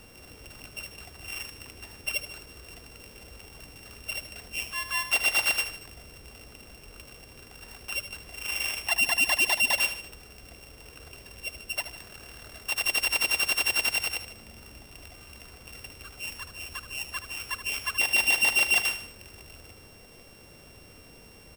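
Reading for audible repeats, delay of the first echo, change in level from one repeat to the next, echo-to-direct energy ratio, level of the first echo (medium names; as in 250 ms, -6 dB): 3, 76 ms, -6.0 dB, -9.5 dB, -10.5 dB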